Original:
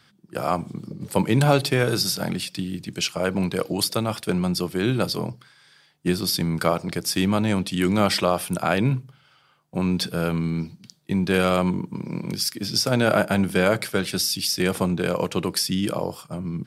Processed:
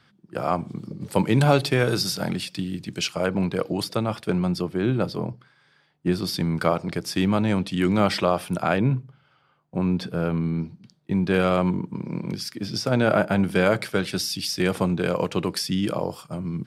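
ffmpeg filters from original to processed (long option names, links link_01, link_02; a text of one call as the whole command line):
ffmpeg -i in.wav -af "asetnsamples=nb_out_samples=441:pad=0,asendcmd='0.7 lowpass f 6000;3.26 lowpass f 2300;4.62 lowpass f 1300;6.12 lowpass f 3100;8.77 lowpass f 1300;11.12 lowpass f 2300;13.44 lowpass f 4300;16.1 lowpass f 7500',lowpass=frequency=2700:poles=1" out.wav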